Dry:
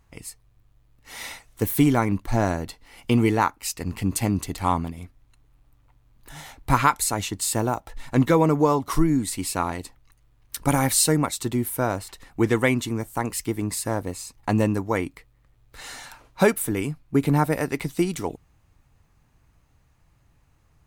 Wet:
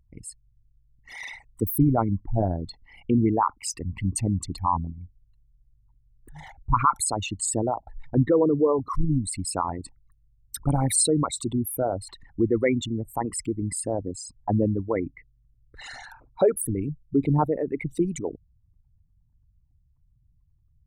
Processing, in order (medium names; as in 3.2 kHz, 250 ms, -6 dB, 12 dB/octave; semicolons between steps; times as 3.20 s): resonances exaggerated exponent 3; trim -1.5 dB